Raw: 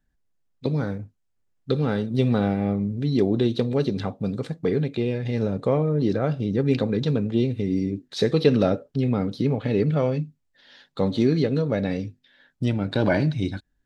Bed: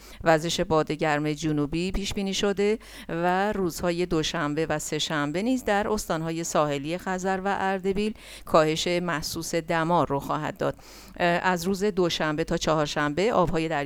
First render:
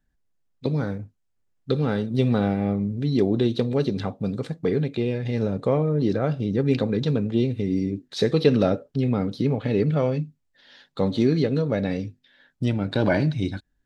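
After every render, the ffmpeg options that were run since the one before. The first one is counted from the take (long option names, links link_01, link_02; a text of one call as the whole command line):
ffmpeg -i in.wav -af anull out.wav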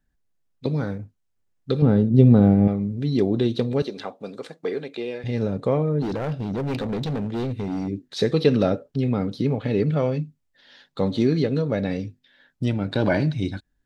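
ffmpeg -i in.wav -filter_complex "[0:a]asettb=1/sr,asplit=3[link_01][link_02][link_03];[link_01]atrim=end=1.824[link_04];[link_02]atrim=start=1.82:end=2.68,asetpts=PTS-STARTPTS,afade=type=in:duration=0.004:curve=qsin,afade=type=out:start_time=0.856:duration=0.004:curve=qsin,tiltshelf=frequency=760:gain=9.5[link_05];[link_03]atrim=start=2.676[link_06];[link_04][link_05]acrossfade=duration=0.004:curve1=hsin:curve2=qsin[link_07];[link_07][link_06]acrossfade=duration=0.004:curve1=qsin:curve2=hsin,asettb=1/sr,asplit=3[link_08][link_09][link_10];[link_08]atrim=end=3.824[link_11];[link_09]atrim=start=3.82:end=5.24,asetpts=PTS-STARTPTS,afade=type=in:duration=0.004:curve=qsin,afade=type=out:start_time=1.416:duration=0.004:curve=qsin,highpass=410[link_12];[link_10]atrim=start=5.236[link_13];[link_11][link_12]acrossfade=duration=0.004:curve1=hsin:curve2=qsin[link_14];[link_14][link_13]acrossfade=duration=0.004:curve1=qsin:curve2=hsin,asplit=3[link_15][link_16][link_17];[link_15]afade=type=out:start_time=6.01:duration=0.02[link_18];[link_16]volume=23dB,asoftclip=hard,volume=-23dB,afade=type=in:start_time=6.01:duration=0.02,afade=type=out:start_time=7.87:duration=0.02[link_19];[link_17]afade=type=in:start_time=7.87:duration=0.02[link_20];[link_18][link_19][link_20]amix=inputs=3:normalize=0" out.wav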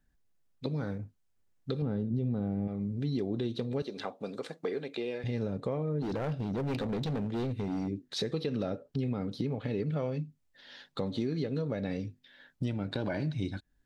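ffmpeg -i in.wav -af "alimiter=limit=-13.5dB:level=0:latency=1:release=234,acompressor=threshold=-36dB:ratio=2" out.wav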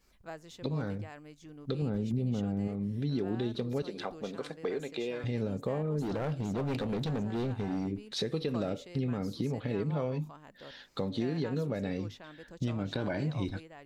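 ffmpeg -i in.wav -i bed.wav -filter_complex "[1:a]volume=-24dB[link_01];[0:a][link_01]amix=inputs=2:normalize=0" out.wav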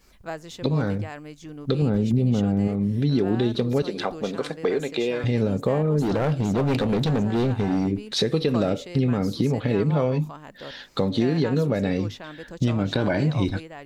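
ffmpeg -i in.wav -af "volume=10.5dB" out.wav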